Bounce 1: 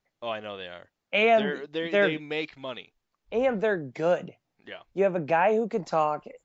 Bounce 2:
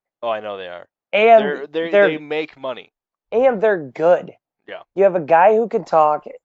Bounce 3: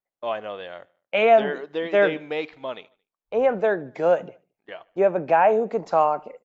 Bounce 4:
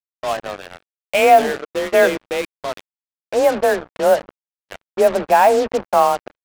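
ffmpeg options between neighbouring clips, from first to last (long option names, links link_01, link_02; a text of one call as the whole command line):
ffmpeg -i in.wav -af "agate=range=-16dB:threshold=-46dB:ratio=16:detection=peak,equalizer=frequency=740:width_type=o:width=2.7:gain=10.5,volume=1dB" out.wav
ffmpeg -i in.wav -af "aecho=1:1:74|148|222:0.0631|0.0315|0.0158,volume=-5.5dB" out.wav
ffmpeg -i in.wav -af "afreqshift=27,adynamicsmooth=sensitivity=7:basefreq=970,acrusher=bits=4:mix=0:aa=0.5,volume=5dB" out.wav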